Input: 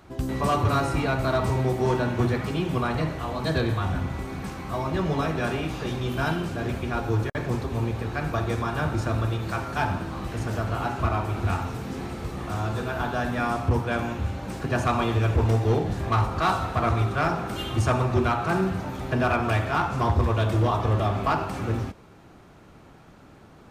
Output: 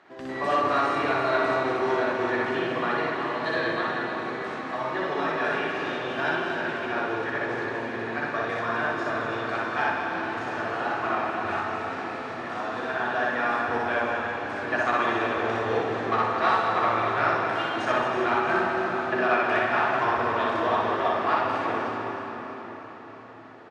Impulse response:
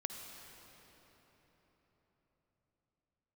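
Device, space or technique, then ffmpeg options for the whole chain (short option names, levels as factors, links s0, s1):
station announcement: -filter_complex "[0:a]asettb=1/sr,asplit=3[s0][s1][s2];[s0]atrim=end=3.734[s3];[s1]atrim=start=3.73:end=4.24,asetpts=PTS-STARTPTS,afade=t=in:d=0.004:c=qsin,afade=t=out:st=0.506:d=0.004:c=qsin,highpass=f=170:w=0.5412,highpass=f=170:w=1.3066[s4];[s2]atrim=start=4.236[s5];[s3][s4]acrossfade=d=0.004:c1=hsin:c2=qsin[s6];[s6][s5]acrossfade=d=0.004:c1=qsin:c2=hsin,highpass=380,lowpass=3900,equalizer=f=1800:t=o:w=0.25:g=9,aecho=1:1:61.22|221.6:0.891|0.355[s7];[1:a]atrim=start_sample=2205[s8];[s7][s8]afir=irnorm=-1:irlink=0,aecho=1:1:320|640|960|1280|1600|1920|2240:0.335|0.188|0.105|0.0588|0.0329|0.0184|0.0103"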